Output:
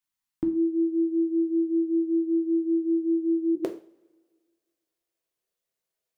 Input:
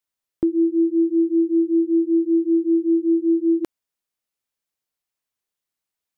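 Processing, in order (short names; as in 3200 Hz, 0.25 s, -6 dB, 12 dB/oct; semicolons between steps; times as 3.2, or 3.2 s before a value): band shelf 500 Hz -10 dB 1 oct, from 3.55 s +8.5 dB; two-slope reverb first 0.38 s, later 1.7 s, from -25 dB, DRR 3 dB; gain -3 dB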